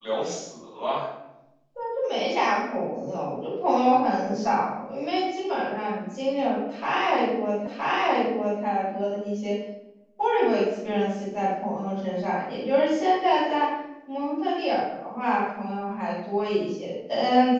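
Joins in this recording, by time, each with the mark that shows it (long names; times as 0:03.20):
0:07.67: the same again, the last 0.97 s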